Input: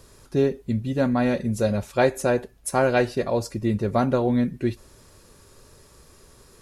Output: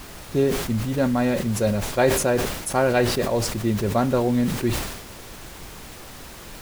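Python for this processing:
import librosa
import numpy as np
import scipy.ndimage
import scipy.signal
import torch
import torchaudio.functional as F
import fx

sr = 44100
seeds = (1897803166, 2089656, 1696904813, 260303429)

y = fx.dmg_noise_colour(x, sr, seeds[0], colour='pink', level_db=-40.0)
y = fx.sustainer(y, sr, db_per_s=56.0)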